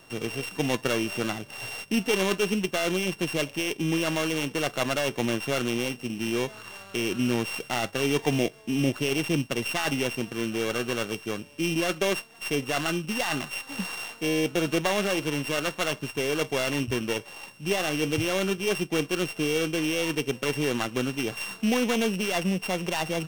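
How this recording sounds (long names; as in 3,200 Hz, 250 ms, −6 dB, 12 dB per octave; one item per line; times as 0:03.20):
a buzz of ramps at a fixed pitch in blocks of 16 samples
IMA ADPCM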